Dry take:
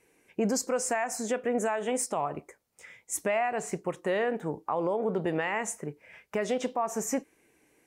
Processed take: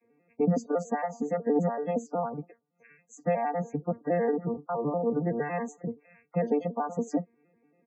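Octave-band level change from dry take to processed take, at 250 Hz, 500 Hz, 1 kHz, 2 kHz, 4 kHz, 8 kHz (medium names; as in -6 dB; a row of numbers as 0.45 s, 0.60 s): +3.0 dB, +0.5 dB, -0.5 dB, -8.0 dB, under -15 dB, under -15 dB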